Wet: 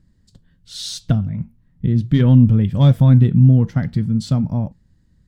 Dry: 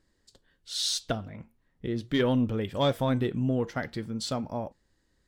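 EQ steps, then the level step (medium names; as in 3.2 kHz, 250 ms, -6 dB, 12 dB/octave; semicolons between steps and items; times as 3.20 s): peaking EQ 190 Hz +5 dB 2.9 oct; resonant low shelf 250 Hz +13.5 dB, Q 1.5; 0.0 dB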